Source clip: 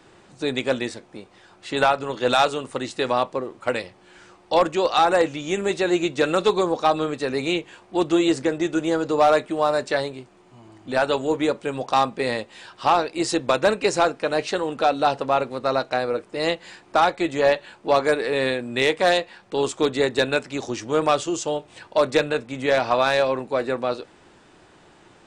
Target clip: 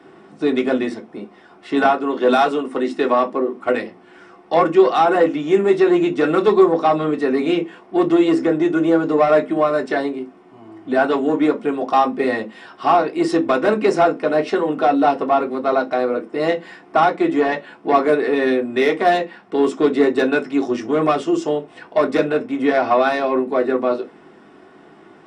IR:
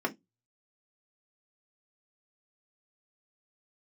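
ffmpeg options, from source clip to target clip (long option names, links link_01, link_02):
-filter_complex "[0:a]asettb=1/sr,asplit=3[link_01][link_02][link_03];[link_01]atrim=end=1.844[link_04];[link_02]atrim=start=1.84:end=3.63,asetpts=PTS-STARTPTS,afade=type=in:duration=0.004:curve=qsin,afade=type=out:start_time=1.786:duration=0.004:curve=qsin,highpass=frequency=160:width=0.5412,highpass=frequency=160:width=1.3066[link_05];[link_03]atrim=start=3.626[link_06];[link_04][link_05]acrossfade=duration=0.004:curve1=hsin:curve2=qsin[link_07];[link_07][link_06]acrossfade=duration=0.004:curve1=qsin:curve2=hsin,asoftclip=type=tanh:threshold=-13dB[link_08];[1:a]atrim=start_sample=2205[link_09];[link_08][link_09]afir=irnorm=-1:irlink=0,volume=-3dB"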